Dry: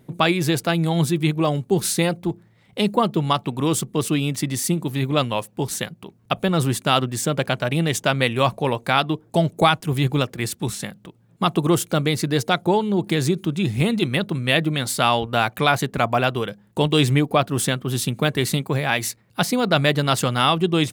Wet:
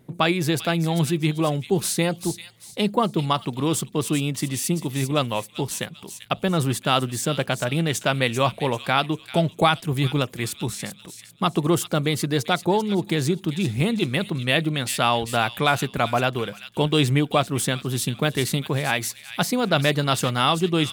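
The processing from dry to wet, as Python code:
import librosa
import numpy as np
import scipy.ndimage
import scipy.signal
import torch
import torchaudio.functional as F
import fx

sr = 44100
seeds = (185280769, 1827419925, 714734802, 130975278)

y = fx.echo_wet_highpass(x, sr, ms=392, feedback_pct=34, hz=2700.0, wet_db=-8)
y = y * librosa.db_to_amplitude(-2.0)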